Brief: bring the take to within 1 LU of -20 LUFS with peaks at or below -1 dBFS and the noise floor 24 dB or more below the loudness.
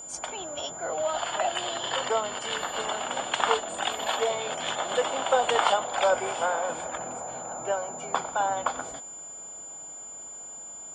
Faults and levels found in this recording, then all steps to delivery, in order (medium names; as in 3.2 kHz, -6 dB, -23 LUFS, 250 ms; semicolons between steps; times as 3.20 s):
steady tone 7.1 kHz; tone level -39 dBFS; loudness -29.0 LUFS; peak level -7.0 dBFS; loudness target -20.0 LUFS
-> band-stop 7.1 kHz, Q 30; trim +9 dB; peak limiter -1 dBFS